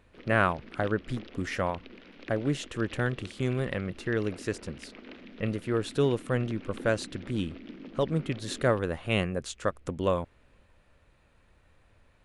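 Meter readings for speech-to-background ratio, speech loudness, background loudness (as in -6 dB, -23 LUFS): 16.5 dB, -30.5 LUFS, -47.0 LUFS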